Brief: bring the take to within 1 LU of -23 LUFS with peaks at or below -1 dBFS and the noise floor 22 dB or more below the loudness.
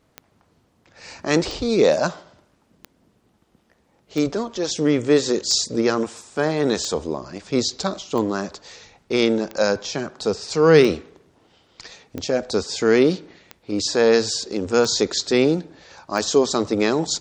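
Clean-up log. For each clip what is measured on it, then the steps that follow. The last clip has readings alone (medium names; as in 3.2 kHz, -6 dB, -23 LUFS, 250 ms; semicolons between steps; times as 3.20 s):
clicks found 13; loudness -21.0 LUFS; peak level -1.5 dBFS; loudness target -23.0 LUFS
-> de-click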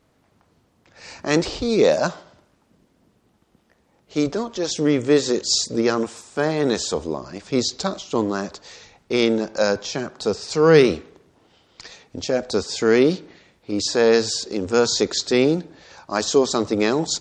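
clicks found 0; loudness -21.0 LUFS; peak level -1.5 dBFS; loudness target -23.0 LUFS
-> trim -2 dB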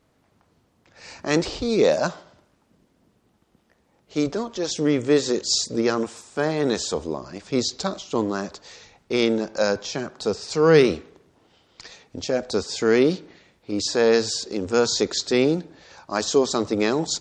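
loudness -23.0 LUFS; peak level -3.5 dBFS; noise floor -65 dBFS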